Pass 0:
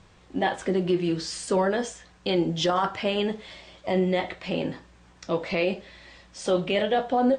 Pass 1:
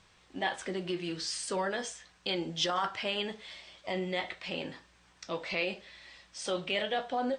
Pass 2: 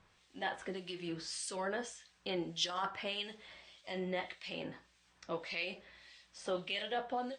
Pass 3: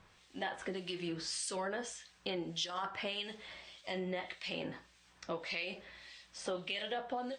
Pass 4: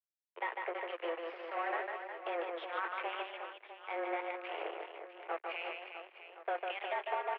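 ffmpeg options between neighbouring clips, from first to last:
-af "tiltshelf=f=920:g=-6,bandreject=f=7k:w=17,volume=-7dB"
-filter_complex "[0:a]acrossover=split=2200[a][b];[a]aeval=exprs='val(0)*(1-0.7/2+0.7/2*cos(2*PI*1.7*n/s))':c=same[c];[b]aeval=exprs='val(0)*(1-0.7/2-0.7/2*cos(2*PI*1.7*n/s))':c=same[d];[c][d]amix=inputs=2:normalize=0,volume=-2.5dB"
-af "acompressor=threshold=-40dB:ratio=4,volume=4.5dB"
-af "acrusher=bits=5:mix=0:aa=0.5,highpass=f=190:t=q:w=0.5412,highpass=f=190:t=q:w=1.307,lowpass=f=2.4k:t=q:w=0.5176,lowpass=f=2.4k:t=q:w=0.7071,lowpass=f=2.4k:t=q:w=1.932,afreqshift=170,aecho=1:1:150|360|654|1066|1642:0.631|0.398|0.251|0.158|0.1,volume=1dB"

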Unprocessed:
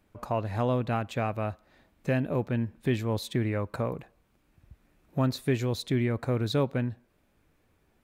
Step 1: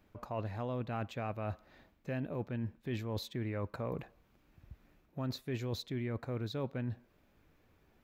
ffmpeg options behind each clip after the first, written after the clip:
-af "equalizer=f=9.2k:w=2.2:g=-11.5,areverse,acompressor=threshold=-35dB:ratio=6,areverse"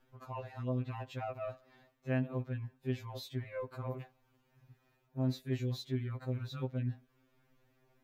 -af "afftfilt=real='re*2.45*eq(mod(b,6),0)':imag='im*2.45*eq(mod(b,6),0)':win_size=2048:overlap=0.75"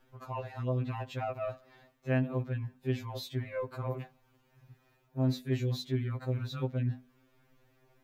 -af "bandreject=f=50:t=h:w=6,bandreject=f=100:t=h:w=6,bandreject=f=150:t=h:w=6,bandreject=f=200:t=h:w=6,bandreject=f=250:t=h:w=6,volume=4.5dB"

